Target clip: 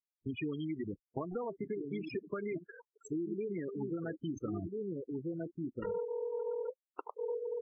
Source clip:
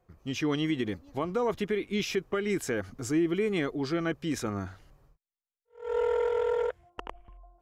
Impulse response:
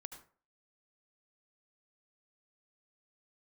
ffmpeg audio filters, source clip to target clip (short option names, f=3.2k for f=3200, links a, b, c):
-filter_complex "[0:a]acrusher=bits=5:mix=0:aa=0.000001,asettb=1/sr,asplit=3[a][b][c];[a]atrim=end=1.234[d];[b]atrim=start=1.23:end=1.97,asetpts=PTS-STARTPTS,afade=t=in:d=0.004:c=qsin,afade=t=out:st=0.736:d=0.004:c=qsin,highshelf=f=6.1k:g=11[e];[c]atrim=start=1.966[f];[d][e]acrossfade=d=0.004:c1=hsin:c2=qsin[g];[g][f]acrossfade=d=0.004:c1=qsin:c2=hsin,asplit=3[h][i][j];[h]afade=t=out:st=4.52:d=0.02[k];[i]acontrast=27,afade=t=in:st=4.52:d=0.02,afade=t=out:st=6.03:d=0.02[l];[j]afade=t=in:st=6.03:d=0.02[m];[k][l][m]amix=inputs=3:normalize=0,asplit=2[n][o];[o]adelay=1341,volume=-7dB,highshelf=f=4k:g=-30.2[p];[n][p]amix=inputs=2:normalize=0,flanger=delay=6.4:depth=7.7:regen=-71:speed=0.84:shape=sinusoidal,acompressor=threshold=-39dB:ratio=10,asplit=3[q][r][s];[q]afade=t=out:st=2.63:d=0.02[t];[r]highpass=850,afade=t=in:st=2.63:d=0.02,afade=t=out:st=3.1:d=0.02[u];[s]afade=t=in:st=3.1:d=0.02[v];[t][u][v]amix=inputs=3:normalize=0,afftfilt=real='re*gte(hypot(re,im),0.0178)':imag='im*gte(hypot(re,im),0.0178)':win_size=1024:overlap=0.75,volume=5.5dB" -ar 32000 -c:a libvorbis -b:a 64k